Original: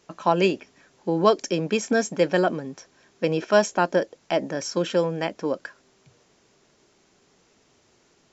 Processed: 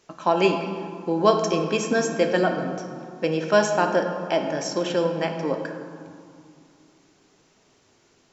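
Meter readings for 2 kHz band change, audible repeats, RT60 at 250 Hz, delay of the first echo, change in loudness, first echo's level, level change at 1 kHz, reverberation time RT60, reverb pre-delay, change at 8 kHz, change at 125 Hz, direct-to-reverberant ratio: +1.0 dB, no echo audible, 3.2 s, no echo audible, +0.5 dB, no echo audible, +1.5 dB, 2.4 s, 3 ms, can't be measured, 0.0 dB, 4.0 dB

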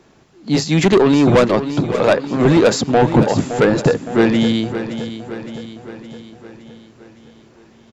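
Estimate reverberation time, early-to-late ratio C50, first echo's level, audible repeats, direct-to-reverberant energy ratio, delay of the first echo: no reverb audible, no reverb audible, −11.0 dB, 5, no reverb audible, 565 ms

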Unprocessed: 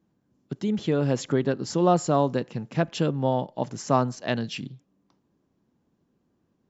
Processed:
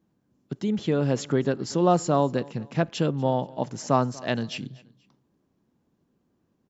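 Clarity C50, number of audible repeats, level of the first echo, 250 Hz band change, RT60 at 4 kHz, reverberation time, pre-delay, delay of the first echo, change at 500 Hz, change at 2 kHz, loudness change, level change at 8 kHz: no reverb audible, 2, −22.5 dB, 0.0 dB, no reverb audible, no reverb audible, no reverb audible, 240 ms, 0.0 dB, 0.0 dB, 0.0 dB, can't be measured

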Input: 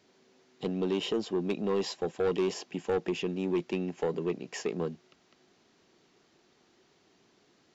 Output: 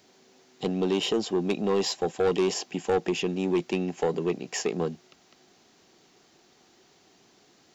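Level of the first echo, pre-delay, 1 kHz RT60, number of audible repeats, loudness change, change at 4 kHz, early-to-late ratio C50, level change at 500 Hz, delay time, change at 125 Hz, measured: no echo audible, no reverb audible, no reverb audible, no echo audible, +4.5 dB, +7.0 dB, no reverb audible, +4.0 dB, no echo audible, +4.0 dB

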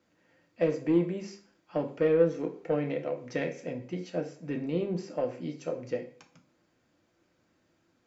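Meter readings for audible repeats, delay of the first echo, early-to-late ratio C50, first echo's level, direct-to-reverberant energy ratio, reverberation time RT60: no echo audible, no echo audible, 11.5 dB, no echo audible, 3.5 dB, 0.50 s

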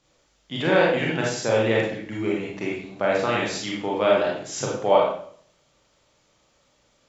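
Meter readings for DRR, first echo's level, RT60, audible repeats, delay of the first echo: −4.0 dB, no echo audible, 0.55 s, no echo audible, no echo audible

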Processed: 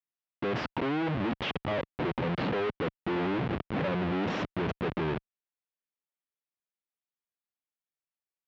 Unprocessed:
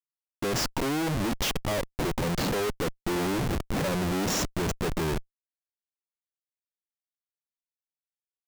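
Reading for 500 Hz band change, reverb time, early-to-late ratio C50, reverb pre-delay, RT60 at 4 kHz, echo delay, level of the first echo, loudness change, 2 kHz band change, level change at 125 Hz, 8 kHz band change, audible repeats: −1.5 dB, no reverb audible, no reverb audible, no reverb audible, no reverb audible, no echo audible, no echo audible, −3.0 dB, −1.5 dB, −3.0 dB, below −25 dB, no echo audible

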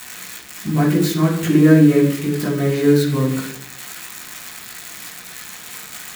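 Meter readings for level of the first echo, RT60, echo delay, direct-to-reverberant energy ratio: no echo audible, 0.70 s, no echo audible, −5.5 dB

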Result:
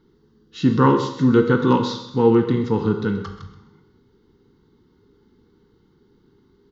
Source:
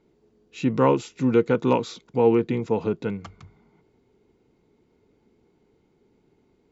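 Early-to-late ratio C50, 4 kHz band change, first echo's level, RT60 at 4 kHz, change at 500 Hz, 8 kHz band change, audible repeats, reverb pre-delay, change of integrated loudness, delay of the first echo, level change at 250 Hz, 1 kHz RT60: 7.5 dB, +7.5 dB, −14.0 dB, 0.85 s, +2.0 dB, can't be measured, 1, 19 ms, +4.0 dB, 129 ms, +6.0 dB, 0.80 s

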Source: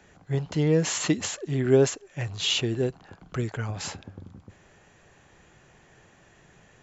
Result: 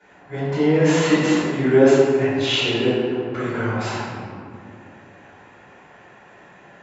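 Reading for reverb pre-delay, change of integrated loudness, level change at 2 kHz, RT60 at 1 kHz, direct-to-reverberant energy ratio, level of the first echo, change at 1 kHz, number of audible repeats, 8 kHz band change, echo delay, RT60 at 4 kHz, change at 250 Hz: 3 ms, +7.5 dB, +10.5 dB, 2.0 s, −15.5 dB, no echo audible, +13.0 dB, no echo audible, can't be measured, no echo audible, 1.1 s, +9.0 dB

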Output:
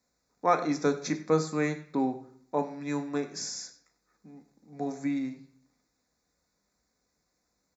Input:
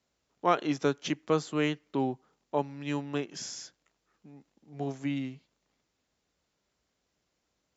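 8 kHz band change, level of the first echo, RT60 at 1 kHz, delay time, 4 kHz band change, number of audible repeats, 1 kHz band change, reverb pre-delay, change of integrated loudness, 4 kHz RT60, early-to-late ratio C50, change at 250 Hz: can't be measured, −17.5 dB, 0.60 s, 95 ms, −2.0 dB, 1, +1.5 dB, 4 ms, +1.5 dB, 0.50 s, 12.5 dB, +1.5 dB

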